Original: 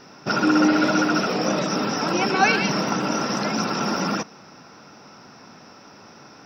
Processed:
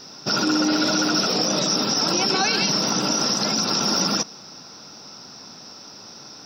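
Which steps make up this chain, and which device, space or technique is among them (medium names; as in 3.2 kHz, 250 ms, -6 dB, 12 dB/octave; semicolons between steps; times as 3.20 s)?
over-bright horn tweeter (resonant high shelf 3.1 kHz +9.5 dB, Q 1.5; peak limiter -11.5 dBFS, peak gain reduction 8 dB)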